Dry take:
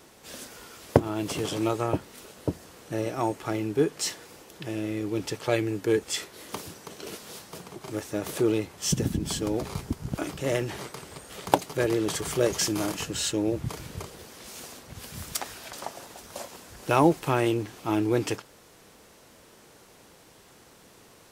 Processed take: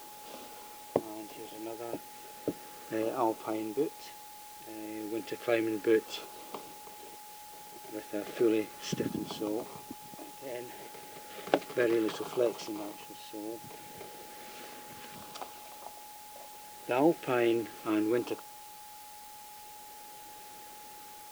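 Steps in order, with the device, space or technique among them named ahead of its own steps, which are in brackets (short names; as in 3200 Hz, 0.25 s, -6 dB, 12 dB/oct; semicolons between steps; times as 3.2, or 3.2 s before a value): shortwave radio (BPF 280–2800 Hz; tremolo 0.34 Hz, depth 80%; LFO notch saw down 0.33 Hz 770–2000 Hz; whine 840 Hz -49 dBFS; white noise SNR 16 dB)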